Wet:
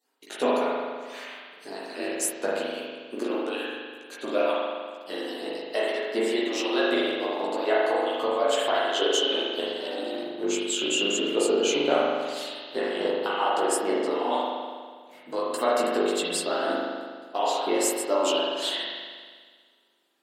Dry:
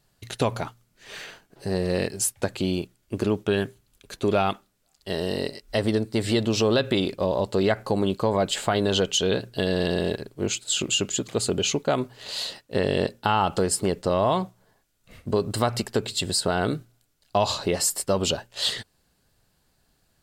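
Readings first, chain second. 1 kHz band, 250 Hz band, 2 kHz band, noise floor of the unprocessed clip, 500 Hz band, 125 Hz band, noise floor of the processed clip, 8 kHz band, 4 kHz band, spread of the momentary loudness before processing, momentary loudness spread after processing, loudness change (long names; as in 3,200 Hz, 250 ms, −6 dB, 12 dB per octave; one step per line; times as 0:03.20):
+0.5 dB, −3.5 dB, +1.0 dB, −69 dBFS, 0.0 dB, below −20 dB, −53 dBFS, −4.0 dB, −1.0 dB, 10 LU, 13 LU, −1.5 dB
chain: harmonic-percussive split with one part muted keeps percussive
high-pass filter 280 Hz 24 dB per octave
dynamic equaliser 4,600 Hz, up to −7 dB, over −45 dBFS, Q 2.8
multi-voice chorus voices 6, 0.37 Hz, delay 16 ms, depth 4.7 ms
spring reverb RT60 1.7 s, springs 40 ms, chirp 40 ms, DRR −5.5 dB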